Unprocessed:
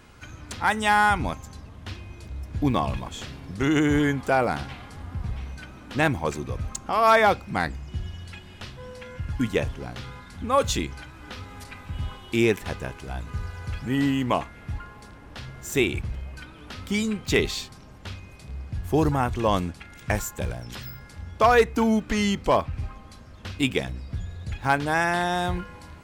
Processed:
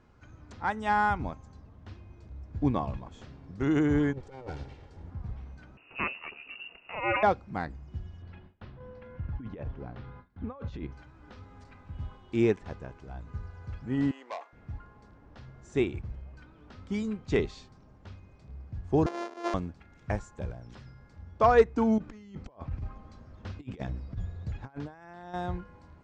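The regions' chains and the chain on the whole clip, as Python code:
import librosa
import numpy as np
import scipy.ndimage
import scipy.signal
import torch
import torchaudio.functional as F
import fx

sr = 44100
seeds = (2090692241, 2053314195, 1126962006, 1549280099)

y = fx.chain(x, sr, fx.lower_of_two(delay_ms=2.2),
    fx.peak_eq(hz=1200.0, db=-8.5, octaves=0.83),
    fx.over_compress(threshold_db=-30.0, ratio=-0.5), at=(4.13, 5.11))
y = fx.chain(y, sr, fx.lower_of_two(delay_ms=0.46),
    fx.low_shelf(hz=440.0, db=4.0),
    fx.freq_invert(carrier_hz=2800), at=(5.77, 7.23))
y = fx.chain(y, sr, fx.over_compress(threshold_db=-29.0, ratio=-1.0),
    fx.gaussian_blur(sigma=2.2),
    fx.gate_hold(open_db=-29.0, close_db=-33.0, hold_ms=71.0, range_db=-21, attack_ms=1.4, release_ms=100.0), at=(8.22, 10.92))
y = fx.chain(y, sr, fx.highpass(hz=470.0, slope=24),
    fx.transformer_sat(knee_hz=3400.0), at=(14.11, 14.53))
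y = fx.chain(y, sr, fx.sample_sort(block=128),
    fx.highpass(hz=370.0, slope=24),
    fx.notch(hz=7900.0, q=9.0), at=(19.06, 19.54))
y = fx.chain(y, sr, fx.over_compress(threshold_db=-30.0, ratio=-0.5),
    fx.steep_lowpass(hz=8600.0, slope=36), at=(21.98, 25.34))
y = scipy.signal.sosfilt(scipy.signal.bessel(8, 4300.0, 'lowpass', norm='mag', fs=sr, output='sos'), y)
y = fx.peak_eq(y, sr, hz=3000.0, db=-9.5, octaves=1.9)
y = fx.upward_expand(y, sr, threshold_db=-31.0, expansion=1.5)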